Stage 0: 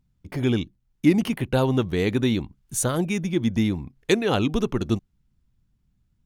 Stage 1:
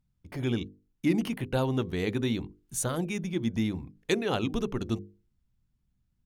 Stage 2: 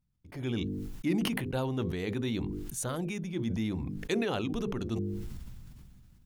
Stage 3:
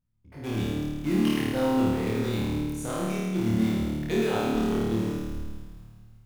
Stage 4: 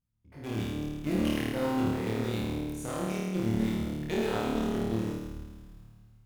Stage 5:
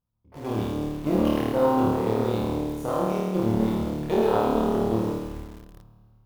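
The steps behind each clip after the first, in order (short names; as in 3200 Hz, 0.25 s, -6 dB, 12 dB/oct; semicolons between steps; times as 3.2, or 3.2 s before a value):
notches 50/100/150/200/250/300/350/400/450/500 Hz; gain -6 dB
sustainer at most 23 dB/s; gain -5 dB
high shelf 2300 Hz -8 dB; in parallel at -10 dB: bit-crush 5-bit; on the sum: flutter echo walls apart 4.6 m, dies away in 1.5 s; gain -2.5 dB
tube stage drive 19 dB, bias 0.75
graphic EQ 500/1000/2000/8000 Hz +6/+9/-8/-11 dB; in parallel at -6 dB: bit-crush 7-bit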